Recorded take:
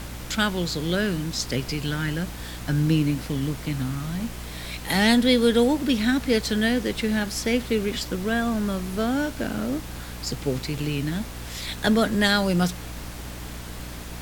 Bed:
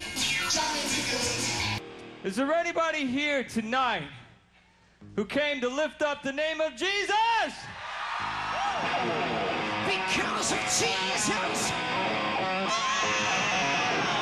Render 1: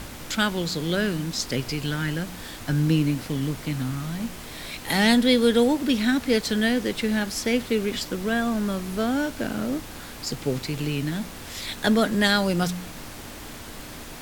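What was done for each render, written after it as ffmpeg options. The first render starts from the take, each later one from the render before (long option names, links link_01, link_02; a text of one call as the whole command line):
ffmpeg -i in.wav -af "bandreject=frequency=60:width_type=h:width=4,bandreject=frequency=120:width_type=h:width=4,bandreject=frequency=180:width_type=h:width=4" out.wav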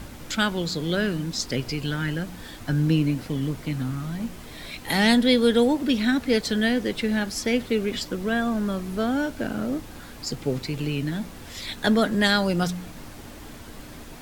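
ffmpeg -i in.wav -af "afftdn=noise_reduction=6:noise_floor=-39" out.wav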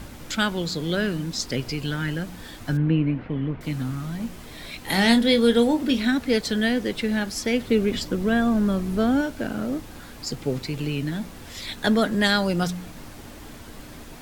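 ffmpeg -i in.wav -filter_complex "[0:a]asettb=1/sr,asplit=3[link_01][link_02][link_03];[link_01]atrim=end=2.774[link_04];[link_02]atrim=start=2.77:end=3.61,asetpts=PTS-STARTPTS,afade=type=in:duration=0.004:curve=qsin,afade=type=out:start_time=0.836:duration=0.004:curve=qsin,lowpass=frequency=2600:width=0.5412,lowpass=frequency=2600:width=1.3066[link_05];[link_03]atrim=start=3.606[link_06];[link_04][link_05]acrossfade=duration=0.004:curve1=hsin:curve2=qsin[link_07];[link_07][link_06]acrossfade=duration=0.004:curve1=qsin:curve2=hsin,asettb=1/sr,asplit=3[link_08][link_09][link_10];[link_08]atrim=end=4.824[link_11];[link_09]atrim=start=4.82:end=6.08,asetpts=PTS-STARTPTS,afade=type=in:duration=0.004:curve=qsin,afade=type=out:start_time=1.256:duration=0.004:curve=qsin,asplit=2[link_12][link_13];[link_13]adelay=26,volume=-9dB[link_14];[link_12][link_14]amix=inputs=2:normalize=0,atrim=end_sample=55566[link_15];[link_10]atrim=start=6.076[link_16];[link_11][link_15]acrossfade=duration=0.004:curve1=hsin:curve2=qsin[link_17];[link_17][link_16]acrossfade=duration=0.004:curve1=qsin:curve2=hsin,asettb=1/sr,asplit=3[link_18][link_19][link_20];[link_18]atrim=end=7.674[link_21];[link_19]atrim=start=7.67:end=9.21,asetpts=PTS-STARTPTS,afade=type=in:duration=0.004:curve=qsin,afade=type=out:start_time=1.536:duration=0.004:curve=qsin,lowshelf=frequency=420:gain=6[link_22];[link_20]atrim=start=9.206[link_23];[link_21][link_22]acrossfade=duration=0.004:curve1=hsin:curve2=qsin[link_24];[link_24][link_23]acrossfade=duration=0.004:curve1=qsin:curve2=hsin" out.wav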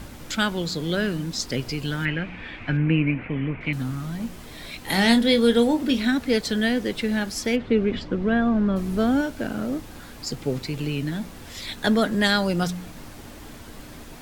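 ffmpeg -i in.wav -filter_complex "[0:a]asettb=1/sr,asplit=3[link_01][link_02][link_03];[link_01]atrim=end=2.054[link_04];[link_02]atrim=start=2.05:end=3.73,asetpts=PTS-STARTPTS,afade=type=in:duration=0.004:curve=qsin,afade=type=out:start_time=1.676:duration=0.004:curve=qsin,lowpass=frequency=2400:width_type=q:width=5.4[link_05];[link_03]atrim=start=3.726[link_06];[link_04][link_05]acrossfade=duration=0.004:curve1=hsin:curve2=qsin[link_07];[link_07][link_06]acrossfade=duration=0.004:curve1=qsin:curve2=hsin,asplit=3[link_08][link_09][link_10];[link_08]afade=type=out:start_time=7.55:duration=0.02[link_11];[link_09]lowpass=2800,afade=type=in:start_time=7.55:duration=0.02,afade=type=out:start_time=8.75:duration=0.02[link_12];[link_10]afade=type=in:start_time=8.75:duration=0.02[link_13];[link_11][link_12][link_13]amix=inputs=3:normalize=0" out.wav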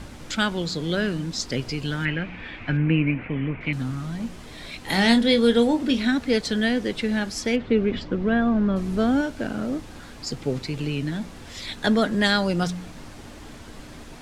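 ffmpeg -i in.wav -af "lowpass=8900" out.wav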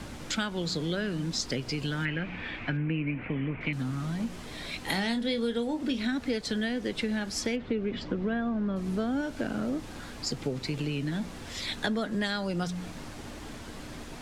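ffmpeg -i in.wav -filter_complex "[0:a]acompressor=threshold=-27dB:ratio=6,acrossover=split=110|2500[link_01][link_02][link_03];[link_01]alimiter=level_in=18dB:limit=-24dB:level=0:latency=1,volume=-18dB[link_04];[link_04][link_02][link_03]amix=inputs=3:normalize=0" out.wav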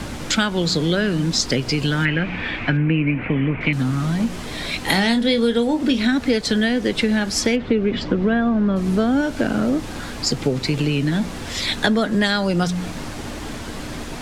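ffmpeg -i in.wav -af "volume=11.5dB" out.wav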